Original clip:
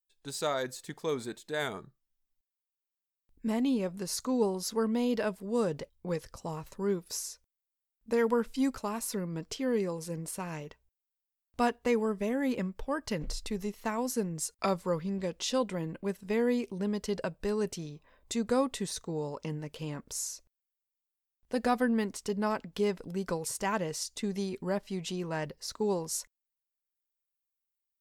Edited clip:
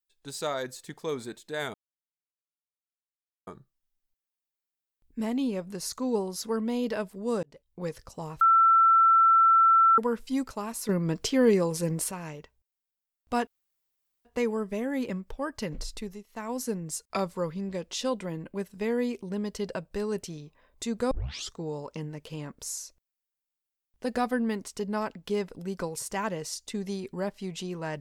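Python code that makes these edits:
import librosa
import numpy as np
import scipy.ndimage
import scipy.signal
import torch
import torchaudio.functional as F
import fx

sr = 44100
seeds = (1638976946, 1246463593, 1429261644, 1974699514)

y = fx.edit(x, sr, fx.insert_silence(at_s=1.74, length_s=1.73),
    fx.fade_in_span(start_s=5.7, length_s=0.46),
    fx.bleep(start_s=6.68, length_s=1.57, hz=1340.0, db=-16.0),
    fx.clip_gain(start_s=9.16, length_s=1.22, db=8.5),
    fx.insert_room_tone(at_s=11.74, length_s=0.78),
    fx.fade_down_up(start_s=13.44, length_s=0.61, db=-11.5, fade_s=0.28),
    fx.tape_start(start_s=18.6, length_s=0.43), tone=tone)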